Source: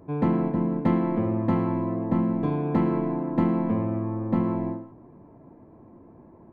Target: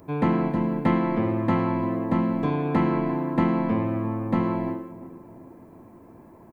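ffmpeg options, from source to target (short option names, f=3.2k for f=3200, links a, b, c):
-filter_complex "[0:a]asplit=2[a][b];[b]adelay=348,lowpass=f=990:p=1,volume=-15dB,asplit=2[c][d];[d]adelay=348,lowpass=f=990:p=1,volume=0.54,asplit=2[e][f];[f]adelay=348,lowpass=f=990:p=1,volume=0.54,asplit=2[g][h];[h]adelay=348,lowpass=f=990:p=1,volume=0.54,asplit=2[i][j];[j]adelay=348,lowpass=f=990:p=1,volume=0.54[k];[a][c][e][g][i][k]amix=inputs=6:normalize=0,crystalizer=i=8.5:c=0,acrossover=split=2900[l][m];[m]acompressor=threshold=-55dB:ratio=4:attack=1:release=60[n];[l][n]amix=inputs=2:normalize=0"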